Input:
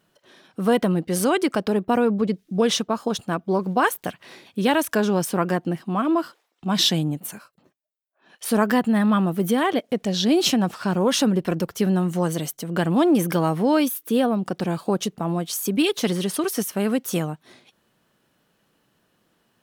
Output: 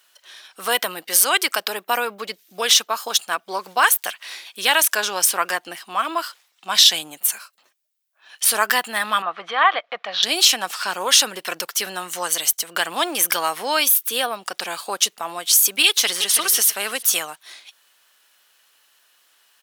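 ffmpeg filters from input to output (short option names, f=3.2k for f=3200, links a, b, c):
-filter_complex "[0:a]asettb=1/sr,asplit=3[a][b][c];[a]atrim=end=0.704[d];[b]atrim=start=0.7:end=3.18,asetpts=PTS-STARTPTS,afade=t=in:d=0.004:c=qsin,afade=t=out:st=2.476:d=0.004:c=qsin,equalizer=f=14k:w=4.4:g=14[e];[c]atrim=start=3.176[f];[d][e]acrossfade=d=0.004:c1=hsin:c2=qsin[g];[g][f]acrossfade=d=0.004:c1=qsin:c2=hsin,asettb=1/sr,asplit=3[h][i][j];[h]atrim=end=9.224[k];[i]atrim=start=9.22:end=10.23,asetpts=PTS-STARTPTS,afade=t=in:d=0.004:c=qsin,afade=t=out:st=1.006:d=0.004:c=qsin,highpass=200,equalizer=f=250:t=q:w=4:g=-8,equalizer=f=390:t=q:w=4:g=-8,equalizer=f=730:t=q:w=4:g=5,equalizer=f=1.2k:t=q:w=4:g=10,equalizer=f=2.9k:t=q:w=4:g=-5,lowpass=f=3.2k:w=0.5412,lowpass=f=3.2k:w=1.3066[l];[j]atrim=start=10.226[m];[k][l]acrossfade=d=0.004:c1=hsin:c2=qsin[n];[n][m]acrossfade=d=0.004:c1=qsin:c2=hsin,asplit=2[o][p];[p]afade=t=in:st=15.87:d=0.01,afade=t=out:st=16.36:d=0.01,aecho=0:1:330|660|990:0.375837|0.0939594|0.0234898[q];[o][q]amix=inputs=2:normalize=0,highpass=740,tiltshelf=f=1.4k:g=-7.5,alimiter=level_in=8dB:limit=-1dB:release=50:level=0:latency=1,volume=-1dB"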